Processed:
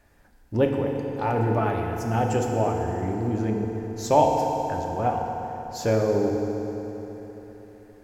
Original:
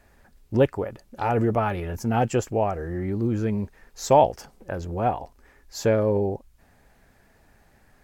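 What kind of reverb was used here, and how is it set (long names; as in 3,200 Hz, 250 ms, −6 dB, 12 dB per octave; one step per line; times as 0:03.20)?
feedback delay network reverb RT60 3.9 s, high-frequency decay 0.75×, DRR 1 dB
level −3 dB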